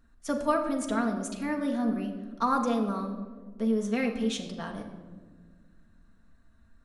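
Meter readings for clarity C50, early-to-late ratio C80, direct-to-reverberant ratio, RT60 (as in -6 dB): 8.0 dB, 9.5 dB, 2.0 dB, 1.6 s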